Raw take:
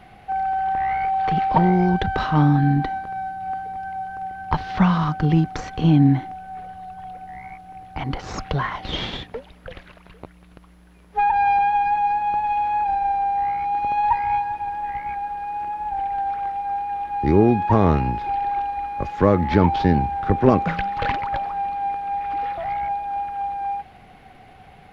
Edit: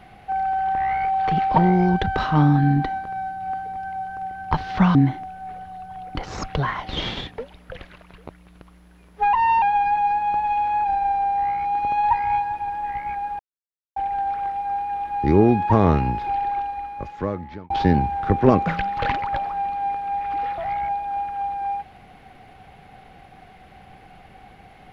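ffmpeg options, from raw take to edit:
ffmpeg -i in.wav -filter_complex "[0:a]asplit=8[link_01][link_02][link_03][link_04][link_05][link_06][link_07][link_08];[link_01]atrim=end=4.952[link_09];[link_02]atrim=start=6.028:end=7.232[link_10];[link_03]atrim=start=8.108:end=11.294[link_11];[link_04]atrim=start=11.29:end=11.62,asetpts=PTS-STARTPTS,asetrate=49833,aresample=44100[link_12];[link_05]atrim=start=11.616:end=15.39,asetpts=PTS-STARTPTS,afade=type=out:start_time=3.77:duration=0.004:curve=hsin[link_13];[link_06]atrim=start=15.39:end=15.96,asetpts=PTS-STARTPTS,volume=0[link_14];[link_07]atrim=start=15.96:end=19.7,asetpts=PTS-STARTPTS,afade=type=in:duration=0.004:curve=hsin,afade=type=out:start_time=2.42:duration=1.32[link_15];[link_08]atrim=start=19.7,asetpts=PTS-STARTPTS,afade=type=in:duration=0.004:curve=hsin[link_16];[link_09][link_10]acrossfade=duration=0.004:curve1=hsin:curve2=hsin[link_17];[link_17][link_11]acrossfade=duration=0.004:curve1=hsin:curve2=hsin[link_18];[link_18][link_12]acrossfade=duration=0.004:curve1=hsin:curve2=hsin[link_19];[link_13][link_14][link_15][link_16]concat=n=4:v=0:a=1[link_20];[link_19][link_20]acrossfade=duration=0.004:curve1=hsin:curve2=hsin" out.wav

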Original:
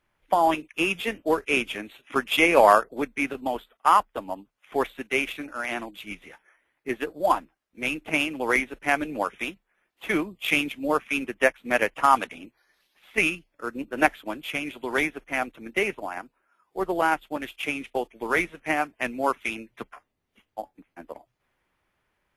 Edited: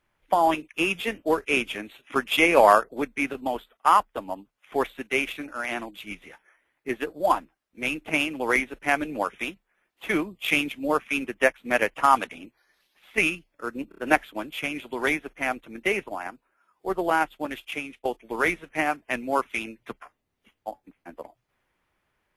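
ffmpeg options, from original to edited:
ffmpeg -i in.wav -filter_complex "[0:a]asplit=5[link_01][link_02][link_03][link_04][link_05];[link_01]atrim=end=13.922[link_06];[link_02]atrim=start=13.888:end=13.922[link_07];[link_03]atrim=start=13.888:end=13.922[link_08];[link_04]atrim=start=13.888:end=17.96,asetpts=PTS-STARTPTS,afade=type=out:start_time=3.592:duration=0.48:silence=0.251189[link_09];[link_05]atrim=start=17.96,asetpts=PTS-STARTPTS,afade=type=in:duration=0.004:curve=hsin:silence=0.251189[link_10];[link_06][link_07]acrossfade=duration=0.004:curve1=hsin:curve2=hsin[link_11];[link_11][link_08]acrossfade=duration=0.004:curve1=hsin:curve2=hsin[link_12];[link_09][link_10]concat=n=2:v=0:a=1[link_13];[link_12][link_13]acrossfade=duration=0.004:curve1=hsin:curve2=hsin" out.wav

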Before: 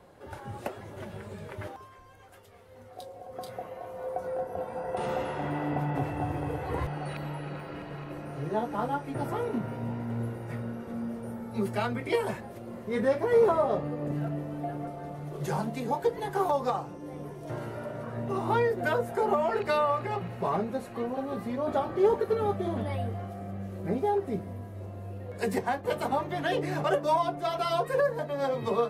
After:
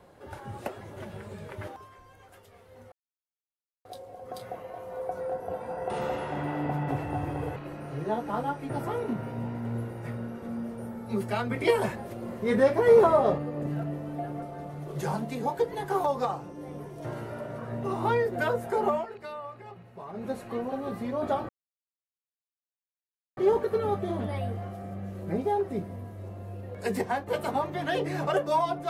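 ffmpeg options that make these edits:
ffmpeg -i in.wav -filter_complex "[0:a]asplit=8[link_01][link_02][link_03][link_04][link_05][link_06][link_07][link_08];[link_01]atrim=end=2.92,asetpts=PTS-STARTPTS,afade=type=out:start_time=2.916:duration=0.004:curve=hsin,apad=pad_dur=0.93[link_09];[link_02]atrim=start=2.92:end=6.632,asetpts=PTS-STARTPTS,afade=type=in:duration=0.004:curve=hsin[link_10];[link_03]atrim=start=8.008:end=11.962[link_11];[link_04]atrim=start=11.958:end=13.832,asetpts=PTS-STARTPTS,volume=4dB[link_12];[link_05]atrim=start=13.828:end=19.52,asetpts=PTS-STARTPTS,afade=type=out:start_time=5.562:duration=0.13:silence=0.211349[link_13];[link_06]atrim=start=19.52:end=20.58,asetpts=PTS-STARTPTS,volume=-13.5dB[link_14];[link_07]atrim=start=20.58:end=21.94,asetpts=PTS-STARTPTS,afade=type=in:duration=0.13:silence=0.211349,afade=type=out:start_time=1.356:duration=0.004:curve=hsin,apad=pad_dur=1.88[link_15];[link_08]atrim=start=21.94,asetpts=PTS-STARTPTS,afade=type=in:duration=0.004:curve=hsin[link_16];[link_09][link_10]concat=n=2:v=0:a=1[link_17];[link_17][link_11]acrossfade=duration=0.004:curve1=hsin:curve2=hsin[link_18];[link_18][link_12]acrossfade=duration=0.004:curve1=hsin:curve2=hsin[link_19];[link_13][link_14][link_15][link_16]concat=n=4:v=0:a=1[link_20];[link_19][link_20]acrossfade=duration=0.004:curve1=hsin:curve2=hsin" out.wav

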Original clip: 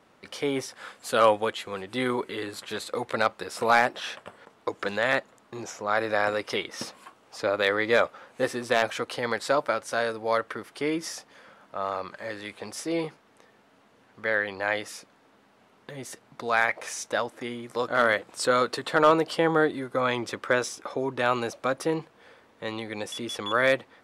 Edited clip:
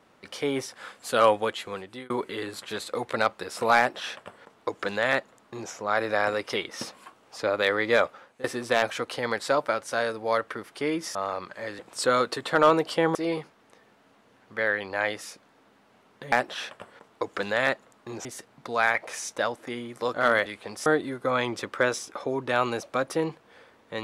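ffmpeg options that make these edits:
ffmpeg -i in.wav -filter_complex "[0:a]asplit=10[link_01][link_02][link_03][link_04][link_05][link_06][link_07][link_08][link_09][link_10];[link_01]atrim=end=2.1,asetpts=PTS-STARTPTS,afade=type=out:start_time=1.71:duration=0.39[link_11];[link_02]atrim=start=2.1:end=8.44,asetpts=PTS-STARTPTS,afade=type=in:duration=0.004:curve=hsin,afade=type=out:start_time=6.01:duration=0.33:silence=0.105925[link_12];[link_03]atrim=start=8.44:end=11.152,asetpts=PTS-STARTPTS,afade=type=in:duration=0.004:curve=hsin:silence=0.105925[link_13];[link_04]atrim=start=11.778:end=12.422[link_14];[link_05]atrim=start=18.198:end=19.562[link_15];[link_06]atrim=start=12.818:end=15.992[link_16];[link_07]atrim=start=3.778:end=5.712[link_17];[link_08]atrim=start=15.988:end=18.202[link_18];[link_09]atrim=start=12.418:end=12.822[link_19];[link_10]atrim=start=19.558[link_20];[link_11][link_12][link_13]concat=n=3:v=0:a=1[link_21];[link_21][link_14]acrossfade=duration=0.004:curve1=hsin:curve2=hsin[link_22];[link_22][link_15]acrossfade=duration=0.004:curve1=hsin:curve2=hsin[link_23];[link_23][link_16]acrossfade=duration=0.004:curve1=hsin:curve2=hsin[link_24];[link_24][link_17]acrossfade=duration=0.004:curve1=hsin:curve2=hsin[link_25];[link_25][link_18]acrossfade=duration=0.004:curve1=hsin:curve2=hsin[link_26];[link_26][link_19]acrossfade=duration=0.004:curve1=hsin:curve2=hsin[link_27];[link_27][link_20]acrossfade=duration=0.004:curve1=hsin:curve2=hsin" out.wav

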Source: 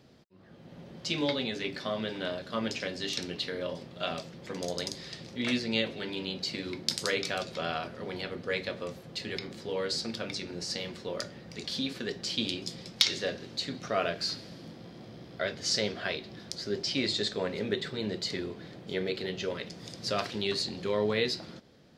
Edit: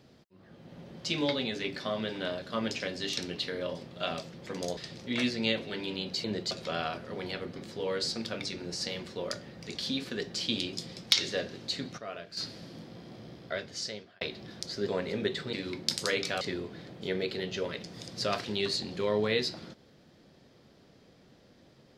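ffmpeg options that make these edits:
ffmpeg -i in.wav -filter_complex "[0:a]asplit=11[link_01][link_02][link_03][link_04][link_05][link_06][link_07][link_08][link_09][link_10][link_11];[link_01]atrim=end=4.772[link_12];[link_02]atrim=start=5.058:end=6.532[link_13];[link_03]atrim=start=17.998:end=18.272[link_14];[link_04]atrim=start=7.408:end=8.462[link_15];[link_05]atrim=start=9.448:end=13.87,asetpts=PTS-STARTPTS,afade=type=out:start_time=4.182:duration=0.24:curve=log:silence=0.266073[link_16];[link_06]atrim=start=13.87:end=14.26,asetpts=PTS-STARTPTS,volume=-11.5dB[link_17];[link_07]atrim=start=14.26:end=16.1,asetpts=PTS-STARTPTS,afade=type=in:duration=0.24:curve=log:silence=0.266073,afade=type=out:start_time=0.92:duration=0.92[link_18];[link_08]atrim=start=16.1:end=16.772,asetpts=PTS-STARTPTS,afade=type=in:duration=0.004:curve=hsin[link_19];[link_09]atrim=start=17.348:end=18.002[link_20];[link_10]atrim=start=6.528:end=7.412[link_21];[link_11]atrim=start=18.268[link_22];[link_12][link_13]acrossfade=duration=0.004:curve1=hsin:curve2=hsin[link_23];[link_23][link_14]acrossfade=duration=0.004:curve1=hsin:curve2=hsin[link_24];[link_24][link_15]acrossfade=duration=0.004:curve1=hsin:curve2=hsin[link_25];[link_16][link_17][link_18][link_19]concat=n=4:v=0:a=1[link_26];[link_25][link_26]acrossfade=duration=0.004:curve1=hsin:curve2=hsin[link_27];[link_27][link_20]acrossfade=duration=0.004:curve1=hsin:curve2=hsin[link_28];[link_28][link_21]acrossfade=duration=0.004:curve1=hsin:curve2=hsin[link_29];[link_29][link_22]acrossfade=duration=0.004:curve1=hsin:curve2=hsin" out.wav

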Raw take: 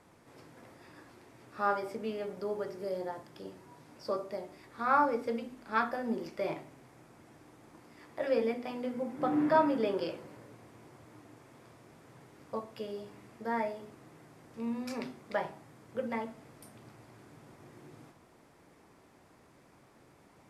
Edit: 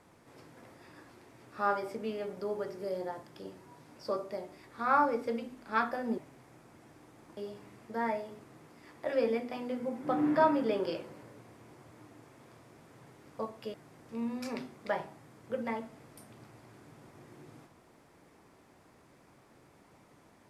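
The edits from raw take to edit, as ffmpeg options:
ffmpeg -i in.wav -filter_complex "[0:a]asplit=5[link_01][link_02][link_03][link_04][link_05];[link_01]atrim=end=6.182[link_06];[link_02]atrim=start=6.628:end=7.822[link_07];[link_03]atrim=start=12.878:end=14.192[link_08];[link_04]atrim=start=7.818:end=12.882[link_09];[link_05]atrim=start=14.188[link_10];[link_06][link_07]acrossfade=duration=0.004:curve1=hsin:curve2=hsin[link_11];[link_11][link_08]acrossfade=duration=0.004:curve1=hsin:curve2=hsin[link_12];[link_12][link_09]acrossfade=duration=0.004:curve1=hsin:curve2=hsin[link_13];[link_13][link_10]acrossfade=duration=0.004:curve1=hsin:curve2=hsin" out.wav

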